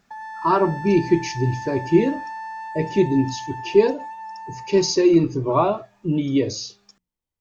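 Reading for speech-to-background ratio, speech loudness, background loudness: 13.5 dB, -20.5 LUFS, -34.0 LUFS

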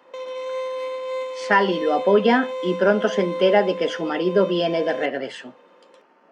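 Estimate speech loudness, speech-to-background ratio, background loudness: -20.5 LUFS, 9.5 dB, -30.0 LUFS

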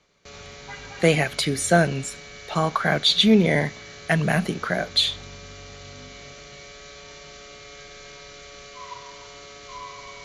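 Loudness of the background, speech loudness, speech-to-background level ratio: -40.5 LUFS, -21.5 LUFS, 19.0 dB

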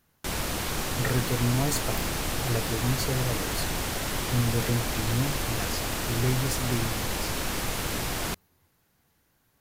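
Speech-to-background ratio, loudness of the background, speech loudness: -1.0 dB, -30.0 LUFS, -31.0 LUFS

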